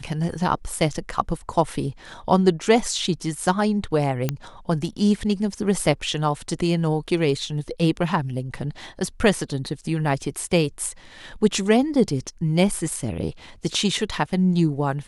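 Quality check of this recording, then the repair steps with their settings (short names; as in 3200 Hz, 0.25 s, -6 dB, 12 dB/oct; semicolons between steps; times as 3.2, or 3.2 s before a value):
4.29 pop -9 dBFS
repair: de-click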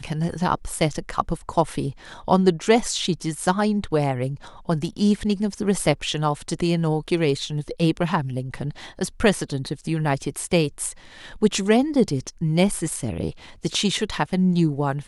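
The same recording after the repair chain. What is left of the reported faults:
none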